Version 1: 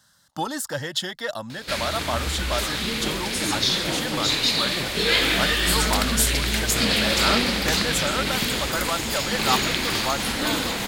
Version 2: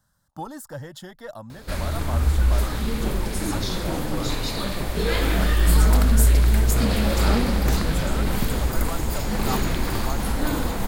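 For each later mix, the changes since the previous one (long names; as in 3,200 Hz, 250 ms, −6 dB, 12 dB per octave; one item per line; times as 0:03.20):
speech −7.0 dB
master: remove meter weighting curve D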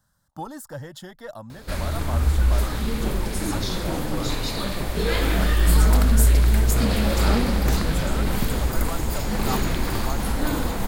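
nothing changed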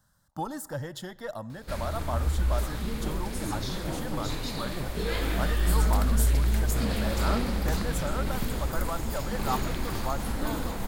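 background −7.0 dB
reverb: on, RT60 1.3 s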